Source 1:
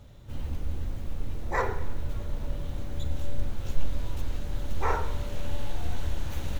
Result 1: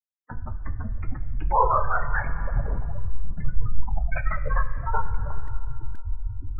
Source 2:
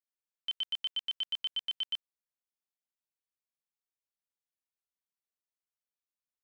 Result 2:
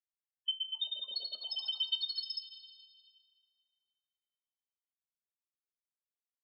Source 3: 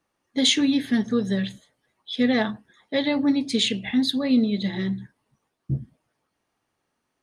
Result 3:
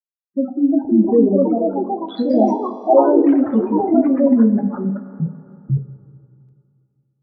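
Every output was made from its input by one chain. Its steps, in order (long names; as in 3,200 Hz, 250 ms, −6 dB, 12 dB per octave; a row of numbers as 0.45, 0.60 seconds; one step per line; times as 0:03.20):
treble cut that deepens with the level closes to 650 Hz, closed at −17.5 dBFS
mains-hum notches 60/120/180/240/300/360/420 Hz
centre clipping without the shift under −30 dBFS
high-shelf EQ 2,800 Hz +8 dB
auto-filter low-pass sine 0.65 Hz 500–1,500 Hz
gate on every frequency bin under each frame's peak −10 dB strong
coupled-rooms reverb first 0.2 s, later 2.5 s, from −18 dB, DRR 1.5 dB
delay with pitch and tempo change per echo 409 ms, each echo +3 semitones, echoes 3
one half of a high-frequency compander encoder only
level +3.5 dB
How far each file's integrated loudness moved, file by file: +6.0, −1.0, +7.0 LU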